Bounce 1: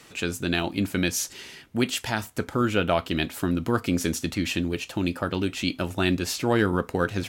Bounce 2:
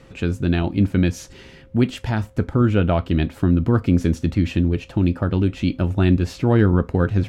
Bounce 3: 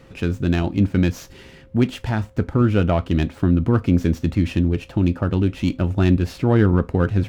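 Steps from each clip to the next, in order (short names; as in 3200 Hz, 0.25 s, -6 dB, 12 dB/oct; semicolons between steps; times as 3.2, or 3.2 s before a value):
whine 530 Hz -55 dBFS; RIAA curve playback
running maximum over 3 samples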